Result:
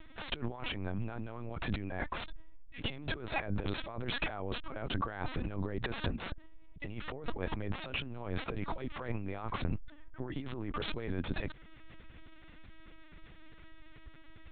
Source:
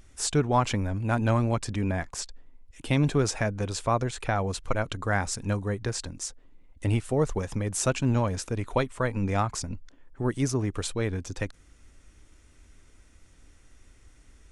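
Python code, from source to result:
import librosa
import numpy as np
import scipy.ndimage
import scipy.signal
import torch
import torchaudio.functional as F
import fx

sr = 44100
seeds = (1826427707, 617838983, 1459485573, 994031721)

y = fx.tracing_dist(x, sr, depth_ms=0.16)
y = fx.low_shelf(y, sr, hz=220.0, db=-4.0)
y = fx.over_compress(y, sr, threshold_db=-37.0, ratio=-1.0)
y = fx.lpc_vocoder(y, sr, seeds[0], excitation='pitch_kept', order=10)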